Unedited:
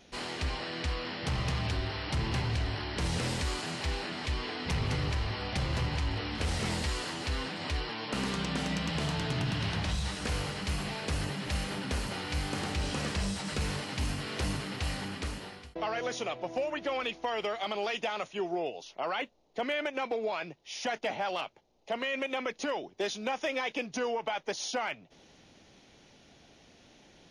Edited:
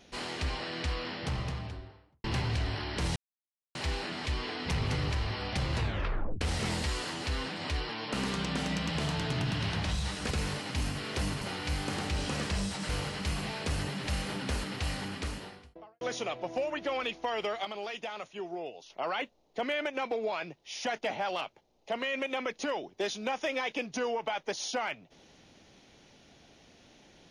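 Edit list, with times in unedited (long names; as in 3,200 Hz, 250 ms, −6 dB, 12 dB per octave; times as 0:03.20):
0:01.02–0:02.24: fade out and dull
0:03.16–0:03.75: silence
0:05.76: tape stop 0.65 s
0:10.31–0:12.06: swap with 0:13.54–0:14.64
0:15.35–0:16.01: fade out and dull
0:17.65–0:18.90: clip gain −5.5 dB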